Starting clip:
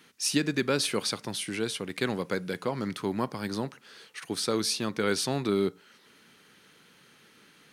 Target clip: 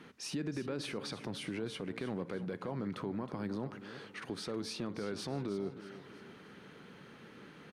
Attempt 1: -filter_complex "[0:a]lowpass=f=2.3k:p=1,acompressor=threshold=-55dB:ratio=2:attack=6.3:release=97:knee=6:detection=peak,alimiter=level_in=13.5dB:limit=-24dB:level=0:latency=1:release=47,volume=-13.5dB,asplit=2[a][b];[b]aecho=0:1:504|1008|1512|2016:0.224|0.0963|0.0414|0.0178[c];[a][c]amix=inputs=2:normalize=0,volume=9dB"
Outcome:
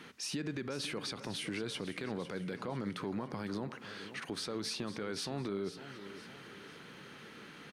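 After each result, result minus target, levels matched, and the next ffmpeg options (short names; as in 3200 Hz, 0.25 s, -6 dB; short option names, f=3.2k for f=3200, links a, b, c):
echo 0.186 s late; 2000 Hz band +3.0 dB
-filter_complex "[0:a]lowpass=f=2.3k:p=1,acompressor=threshold=-55dB:ratio=2:attack=6.3:release=97:knee=6:detection=peak,alimiter=level_in=13.5dB:limit=-24dB:level=0:latency=1:release=47,volume=-13.5dB,asplit=2[a][b];[b]aecho=0:1:318|636|954|1272:0.224|0.0963|0.0414|0.0178[c];[a][c]amix=inputs=2:normalize=0,volume=9dB"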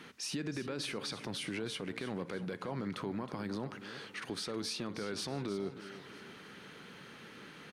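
2000 Hz band +3.0 dB
-filter_complex "[0:a]lowpass=f=860:p=1,acompressor=threshold=-55dB:ratio=2:attack=6.3:release=97:knee=6:detection=peak,alimiter=level_in=13.5dB:limit=-24dB:level=0:latency=1:release=47,volume=-13.5dB,asplit=2[a][b];[b]aecho=0:1:318|636|954|1272:0.224|0.0963|0.0414|0.0178[c];[a][c]amix=inputs=2:normalize=0,volume=9dB"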